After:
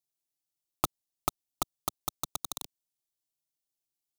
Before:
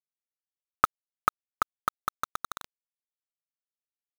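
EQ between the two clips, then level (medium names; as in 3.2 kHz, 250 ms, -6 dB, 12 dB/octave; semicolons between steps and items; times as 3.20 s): peaking EQ 1.3 kHz -12 dB 1.5 oct; static phaser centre 320 Hz, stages 8; +8.5 dB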